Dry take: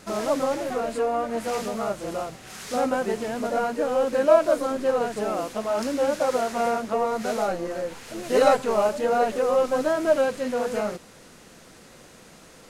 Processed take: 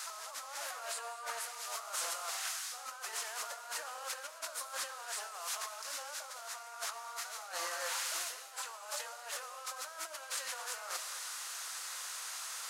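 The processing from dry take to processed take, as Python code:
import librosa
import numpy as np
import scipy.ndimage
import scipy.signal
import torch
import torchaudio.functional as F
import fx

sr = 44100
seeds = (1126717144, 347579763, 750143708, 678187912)

y = scipy.signal.sosfilt(scipy.signal.butter(4, 1100.0, 'highpass', fs=sr, output='sos'), x)
y = fx.over_compress(y, sr, threshold_db=-46.0, ratio=-1.0)
y = fx.peak_eq(y, sr, hz=2200.0, db=-8.0, octaves=1.6)
y = fx.rev_gated(y, sr, seeds[0], gate_ms=290, shape='flat', drr_db=9.5)
y = y * 10.0 ** (5.0 / 20.0)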